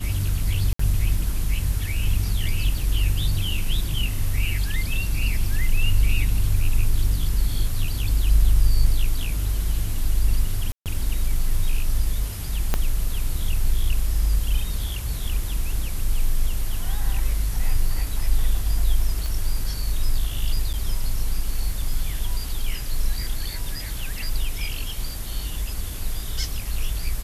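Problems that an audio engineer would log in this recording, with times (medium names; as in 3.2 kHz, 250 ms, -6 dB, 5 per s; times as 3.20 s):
0.73–0.79 s: dropout 64 ms
10.72–10.86 s: dropout 138 ms
12.74 s: pop -7 dBFS
19.26 s: pop
20.73–20.74 s: dropout 7.9 ms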